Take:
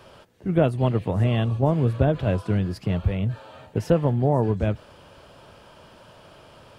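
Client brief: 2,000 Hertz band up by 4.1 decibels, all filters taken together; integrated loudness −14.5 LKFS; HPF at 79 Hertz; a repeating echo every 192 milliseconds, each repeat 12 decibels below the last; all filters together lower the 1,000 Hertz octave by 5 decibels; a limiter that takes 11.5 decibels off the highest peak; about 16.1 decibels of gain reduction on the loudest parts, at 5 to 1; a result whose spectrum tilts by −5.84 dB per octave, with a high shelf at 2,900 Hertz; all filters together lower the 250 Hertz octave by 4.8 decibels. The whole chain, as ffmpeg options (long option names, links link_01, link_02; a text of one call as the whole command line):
ffmpeg -i in.wav -af "highpass=79,equalizer=frequency=250:width_type=o:gain=-7,equalizer=frequency=1000:width_type=o:gain=-8.5,equalizer=frequency=2000:width_type=o:gain=6.5,highshelf=frequency=2900:gain=5,acompressor=threshold=-36dB:ratio=5,alimiter=level_in=9.5dB:limit=-24dB:level=0:latency=1,volume=-9.5dB,aecho=1:1:192|384|576:0.251|0.0628|0.0157,volume=29dB" out.wav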